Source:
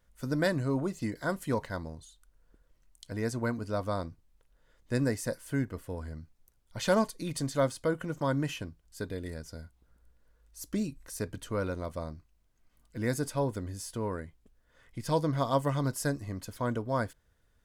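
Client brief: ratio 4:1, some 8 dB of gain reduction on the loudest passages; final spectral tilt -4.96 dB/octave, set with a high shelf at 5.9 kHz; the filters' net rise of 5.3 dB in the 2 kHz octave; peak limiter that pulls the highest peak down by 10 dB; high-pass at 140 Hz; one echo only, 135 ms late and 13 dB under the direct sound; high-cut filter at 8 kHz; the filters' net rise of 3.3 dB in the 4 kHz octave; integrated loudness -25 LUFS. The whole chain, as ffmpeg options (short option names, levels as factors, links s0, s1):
-af "highpass=140,lowpass=8000,equalizer=f=2000:t=o:g=7,equalizer=f=4000:t=o:g=4.5,highshelf=f=5900:g=-5.5,acompressor=threshold=0.0316:ratio=4,alimiter=level_in=1.68:limit=0.0631:level=0:latency=1,volume=0.596,aecho=1:1:135:0.224,volume=5.96"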